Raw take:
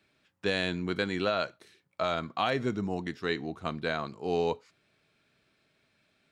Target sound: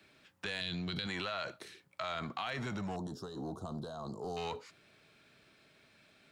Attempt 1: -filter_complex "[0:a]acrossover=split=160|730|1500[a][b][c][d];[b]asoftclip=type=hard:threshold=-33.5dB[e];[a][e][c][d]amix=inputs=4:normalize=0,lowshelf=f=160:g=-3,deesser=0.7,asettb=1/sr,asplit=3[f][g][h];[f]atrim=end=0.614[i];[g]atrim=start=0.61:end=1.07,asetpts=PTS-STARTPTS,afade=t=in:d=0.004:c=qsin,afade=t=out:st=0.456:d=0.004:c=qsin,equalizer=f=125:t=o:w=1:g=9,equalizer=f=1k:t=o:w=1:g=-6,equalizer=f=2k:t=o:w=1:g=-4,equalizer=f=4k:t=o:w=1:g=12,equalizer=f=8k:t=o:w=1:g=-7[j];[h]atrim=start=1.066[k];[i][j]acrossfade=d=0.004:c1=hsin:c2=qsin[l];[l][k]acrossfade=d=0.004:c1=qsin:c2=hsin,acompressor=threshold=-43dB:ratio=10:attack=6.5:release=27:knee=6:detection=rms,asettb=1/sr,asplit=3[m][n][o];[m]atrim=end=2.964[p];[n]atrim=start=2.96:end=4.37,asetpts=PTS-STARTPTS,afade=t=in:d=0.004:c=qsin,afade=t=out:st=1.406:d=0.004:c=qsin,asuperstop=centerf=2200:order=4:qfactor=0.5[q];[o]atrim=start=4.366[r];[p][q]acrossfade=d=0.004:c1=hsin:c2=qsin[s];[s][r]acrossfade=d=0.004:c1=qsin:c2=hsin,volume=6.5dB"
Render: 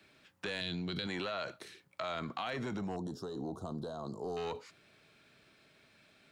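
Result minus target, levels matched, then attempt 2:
hard clip: distortion -5 dB
-filter_complex "[0:a]acrossover=split=160|730|1500[a][b][c][d];[b]asoftclip=type=hard:threshold=-44dB[e];[a][e][c][d]amix=inputs=4:normalize=0,lowshelf=f=160:g=-3,deesser=0.7,asettb=1/sr,asplit=3[f][g][h];[f]atrim=end=0.614[i];[g]atrim=start=0.61:end=1.07,asetpts=PTS-STARTPTS,afade=t=in:d=0.004:c=qsin,afade=t=out:st=0.456:d=0.004:c=qsin,equalizer=f=125:t=o:w=1:g=9,equalizer=f=1k:t=o:w=1:g=-6,equalizer=f=2k:t=o:w=1:g=-4,equalizer=f=4k:t=o:w=1:g=12,equalizer=f=8k:t=o:w=1:g=-7[j];[h]atrim=start=1.066[k];[i][j]acrossfade=d=0.004:c1=hsin:c2=qsin[l];[l][k]acrossfade=d=0.004:c1=qsin:c2=hsin,acompressor=threshold=-43dB:ratio=10:attack=6.5:release=27:knee=6:detection=rms,asettb=1/sr,asplit=3[m][n][o];[m]atrim=end=2.964[p];[n]atrim=start=2.96:end=4.37,asetpts=PTS-STARTPTS,afade=t=in:d=0.004:c=qsin,afade=t=out:st=1.406:d=0.004:c=qsin,asuperstop=centerf=2200:order=4:qfactor=0.5[q];[o]atrim=start=4.366[r];[p][q]acrossfade=d=0.004:c1=hsin:c2=qsin[s];[s][r]acrossfade=d=0.004:c1=qsin:c2=hsin,volume=6.5dB"

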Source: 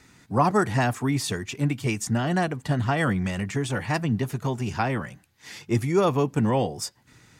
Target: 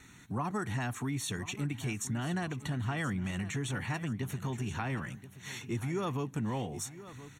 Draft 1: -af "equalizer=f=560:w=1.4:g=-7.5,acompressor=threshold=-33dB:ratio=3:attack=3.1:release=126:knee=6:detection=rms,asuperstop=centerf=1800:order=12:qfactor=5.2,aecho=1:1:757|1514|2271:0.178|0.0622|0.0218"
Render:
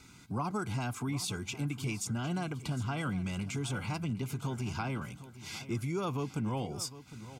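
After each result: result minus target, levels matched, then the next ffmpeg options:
echo 0.271 s early; 2000 Hz band -2.5 dB
-af "equalizer=f=560:w=1.4:g=-7.5,acompressor=threshold=-33dB:ratio=3:attack=3.1:release=126:knee=6:detection=rms,asuperstop=centerf=1800:order=12:qfactor=5.2,aecho=1:1:1028|2056|3084:0.178|0.0622|0.0218"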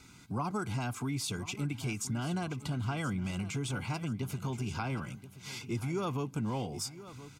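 2000 Hz band -2.5 dB
-af "equalizer=f=560:w=1.4:g=-7.5,acompressor=threshold=-33dB:ratio=3:attack=3.1:release=126:knee=6:detection=rms,asuperstop=centerf=4900:order=12:qfactor=5.2,aecho=1:1:1028|2056|3084:0.178|0.0622|0.0218"

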